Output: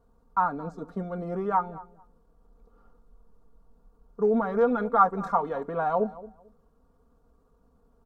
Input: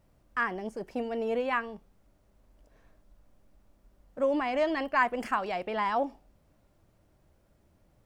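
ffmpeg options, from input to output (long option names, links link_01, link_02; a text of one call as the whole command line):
ffmpeg -i in.wav -filter_complex "[0:a]asplit=2[link_01][link_02];[link_02]adelay=221,lowpass=frequency=1600:poles=1,volume=-17dB,asplit=2[link_03][link_04];[link_04]adelay=221,lowpass=frequency=1600:poles=1,volume=0.23[link_05];[link_03][link_05]amix=inputs=2:normalize=0[link_06];[link_01][link_06]amix=inputs=2:normalize=0,asetrate=34006,aresample=44100,atempo=1.29684,highshelf=frequency=1600:width_type=q:width=3:gain=-8.5,aecho=1:1:4.3:0.73" out.wav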